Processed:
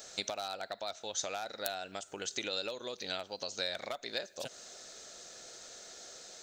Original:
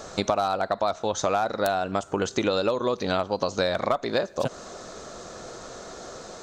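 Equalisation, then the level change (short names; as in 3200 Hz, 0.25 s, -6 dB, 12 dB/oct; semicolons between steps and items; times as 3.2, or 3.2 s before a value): pre-emphasis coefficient 0.97; bell 1100 Hz -12.5 dB 0.61 oct; bell 11000 Hz -11.5 dB 2.1 oct; +7.0 dB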